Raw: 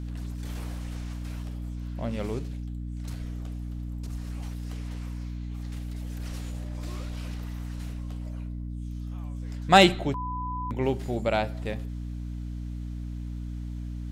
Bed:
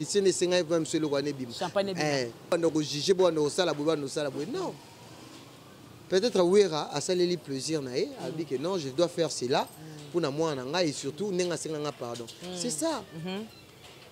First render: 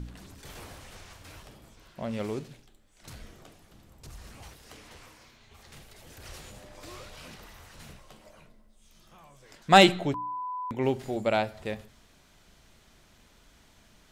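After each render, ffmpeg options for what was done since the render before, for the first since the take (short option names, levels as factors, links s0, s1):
-af "bandreject=f=60:t=h:w=4,bandreject=f=120:t=h:w=4,bandreject=f=180:t=h:w=4,bandreject=f=240:t=h:w=4,bandreject=f=300:t=h:w=4"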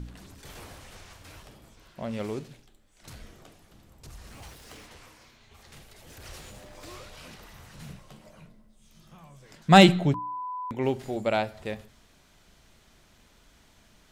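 -filter_complex "[0:a]asettb=1/sr,asplit=3[s0][s1][s2];[s0]atrim=end=4.314[s3];[s1]atrim=start=4.31:end=4.86,asetpts=PTS-STARTPTS,afade=t=in:d=0.004:c=qsin,afade=t=out:st=0.546:d=0.004:c=qsin,aeval=exprs='val(0)+0.5*0.00251*sgn(val(0))':c=same[s4];[s2]atrim=start=4.856[s5];[s3][s4]acrossfade=d=0.004:c1=hsin:c2=qsin[s6];[s6][s5]acrossfade=d=0.004:c1=qsin:c2=hsin,asettb=1/sr,asplit=3[s7][s8][s9];[s7]atrim=end=6.084[s10];[s8]atrim=start=6.08:end=6.98,asetpts=PTS-STARTPTS,afade=t=in:d=0.004:c=qsin,afade=t=out:st=0.896:d=0.004:c=qsin,aeval=exprs='val(0)+0.5*0.00141*sgn(val(0))':c=same[s11];[s9]atrim=start=6.976[s12];[s10][s11]acrossfade=d=0.004:c1=hsin:c2=qsin[s13];[s13][s12]acrossfade=d=0.004:c1=qsin:c2=hsin,asettb=1/sr,asplit=3[s14][s15][s16];[s14]atrim=end=7.534[s17];[s15]atrim=start=7.53:end=10.19,asetpts=PTS-STARTPTS,afade=t=in:d=0.004:c=qsin,afade=t=out:st=2.656:d=0.004:c=qsin,equalizer=f=160:w=1.5:g=10.5[s18];[s16]atrim=start=10.186[s19];[s17][s18]acrossfade=d=0.004:c1=hsin:c2=qsin[s20];[s20][s19]acrossfade=d=0.004:c1=qsin:c2=hsin"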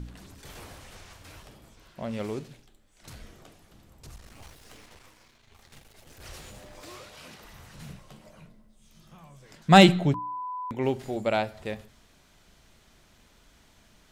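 -filter_complex "[0:a]asettb=1/sr,asplit=3[s0][s1][s2];[s0]atrim=end=4.164[s3];[s1]atrim=start=4.16:end=6.21,asetpts=PTS-STARTPTS,afade=t=in:d=0.004:c=qsin,afade=t=out:st=2.046:d=0.004:c=qsin,aeval=exprs='if(lt(val(0),0),0.251*val(0),val(0))':c=same[s4];[s2]atrim=start=6.206[s5];[s3][s4]acrossfade=d=0.004:c1=hsin:c2=qsin[s6];[s6][s5]acrossfade=d=0.004:c1=qsin:c2=hsin,asettb=1/sr,asplit=3[s7][s8][s9];[s7]atrim=end=6.814[s10];[s8]atrim=start=6.81:end=7.45,asetpts=PTS-STARTPTS,afade=t=in:d=0.004:c=qsin,afade=t=out:st=0.636:d=0.004:c=qsin,highpass=f=140:p=1[s11];[s9]atrim=start=7.446[s12];[s10][s11]acrossfade=d=0.004:c1=hsin:c2=qsin[s13];[s13][s12]acrossfade=d=0.004:c1=qsin:c2=hsin"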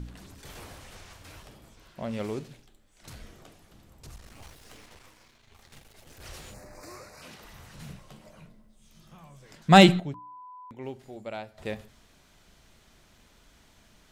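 -filter_complex "[0:a]asettb=1/sr,asplit=3[s0][s1][s2];[s0]atrim=end=6.544[s3];[s1]atrim=start=6.54:end=7.22,asetpts=PTS-STARTPTS,afade=t=in:d=0.004:c=qsin,afade=t=out:st=0.676:d=0.004:c=qsin,asuperstop=centerf=3200:order=4:qfactor=1.6[s4];[s2]atrim=start=7.216[s5];[s3][s4]acrossfade=d=0.004:c1=hsin:c2=qsin[s6];[s6][s5]acrossfade=d=0.004:c1=qsin:c2=hsin,asplit=3[s7][s8][s9];[s7]atrim=end=10.002[s10];[s8]atrim=start=9.998:end=11.582,asetpts=PTS-STARTPTS,volume=0.266[s11];[s9]atrim=start=11.578[s12];[s10][s11]acrossfade=d=0.004:c1=hsin:c2=hsin[s13];[s13][s12]acrossfade=d=0.004:c1=hsin:c2=hsin"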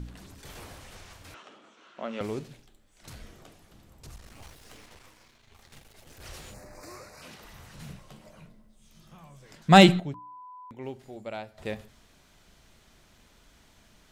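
-filter_complex "[0:a]asettb=1/sr,asplit=3[s0][s1][s2];[s0]atrim=end=1.344[s3];[s1]atrim=start=1.34:end=2.21,asetpts=PTS-STARTPTS,afade=t=in:d=0.004:c=qsin,afade=t=out:st=0.866:d=0.004:c=qsin,highpass=f=240:w=0.5412,highpass=f=240:w=1.3066,equalizer=f=1300:t=q:w=4:g=9,equalizer=f=2900:t=q:w=4:g=4,equalizer=f=4900:t=q:w=4:g=-8,lowpass=f=6500:w=0.5412,lowpass=f=6500:w=1.3066[s4];[s2]atrim=start=2.206[s5];[s3][s4]acrossfade=d=0.004:c1=hsin:c2=qsin[s6];[s6][s5]acrossfade=d=0.004:c1=qsin:c2=hsin"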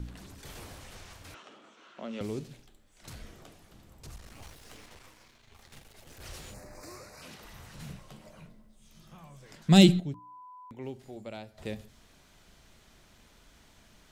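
-filter_complex "[0:a]acrossover=split=430|3000[s0][s1][s2];[s1]acompressor=threshold=0.00282:ratio=2[s3];[s0][s3][s2]amix=inputs=3:normalize=0"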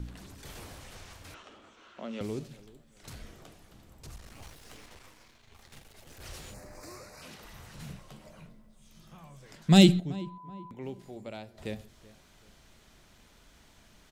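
-filter_complex "[0:a]asplit=2[s0][s1];[s1]adelay=380,lowpass=f=1800:p=1,volume=0.1,asplit=2[s2][s3];[s3]adelay=380,lowpass=f=1800:p=1,volume=0.39,asplit=2[s4][s5];[s5]adelay=380,lowpass=f=1800:p=1,volume=0.39[s6];[s0][s2][s4][s6]amix=inputs=4:normalize=0"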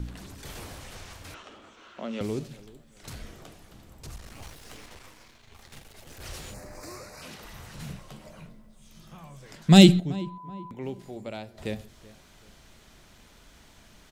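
-af "volume=1.68"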